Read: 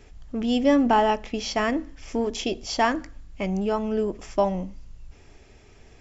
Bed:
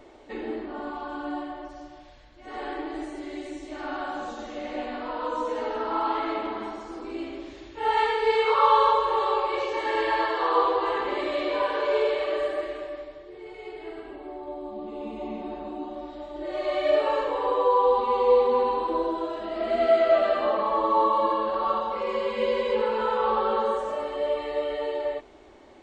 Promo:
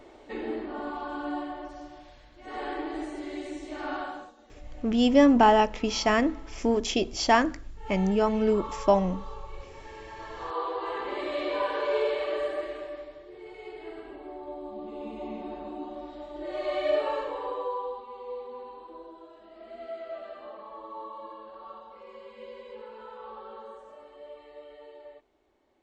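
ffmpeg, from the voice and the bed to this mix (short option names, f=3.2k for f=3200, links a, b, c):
-filter_complex "[0:a]adelay=4500,volume=1dB[a];[1:a]volume=16dB,afade=t=out:st=3.94:d=0.38:silence=0.112202,afade=t=in:st=10.15:d=1.3:silence=0.149624,afade=t=out:st=16.82:d=1.22:silence=0.158489[b];[a][b]amix=inputs=2:normalize=0"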